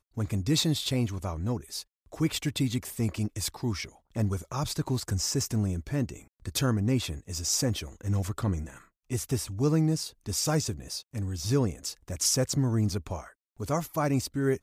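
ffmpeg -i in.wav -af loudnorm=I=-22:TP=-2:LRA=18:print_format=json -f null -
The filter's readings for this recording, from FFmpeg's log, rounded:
"input_i" : "-29.5",
"input_tp" : "-12.7",
"input_lra" : "2.1",
"input_thresh" : "-39.7",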